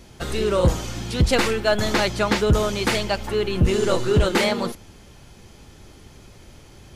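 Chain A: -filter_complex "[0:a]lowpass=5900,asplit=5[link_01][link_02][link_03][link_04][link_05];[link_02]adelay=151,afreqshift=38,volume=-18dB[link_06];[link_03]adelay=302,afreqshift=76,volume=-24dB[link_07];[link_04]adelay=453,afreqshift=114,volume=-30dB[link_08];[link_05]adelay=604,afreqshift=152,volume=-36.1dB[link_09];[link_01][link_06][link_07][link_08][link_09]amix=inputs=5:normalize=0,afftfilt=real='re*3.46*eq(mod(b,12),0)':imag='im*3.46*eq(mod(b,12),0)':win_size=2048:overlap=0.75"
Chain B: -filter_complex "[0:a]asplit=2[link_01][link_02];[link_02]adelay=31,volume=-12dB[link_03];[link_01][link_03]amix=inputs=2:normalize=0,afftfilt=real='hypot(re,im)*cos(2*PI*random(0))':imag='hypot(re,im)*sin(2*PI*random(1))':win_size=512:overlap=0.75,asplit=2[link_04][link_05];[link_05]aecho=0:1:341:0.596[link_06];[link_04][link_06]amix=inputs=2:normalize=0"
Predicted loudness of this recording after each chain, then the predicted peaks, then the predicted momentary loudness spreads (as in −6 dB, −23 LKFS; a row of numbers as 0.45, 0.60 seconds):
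−27.0, −26.0 LKFS; −3.5, −11.0 dBFS; 12, 6 LU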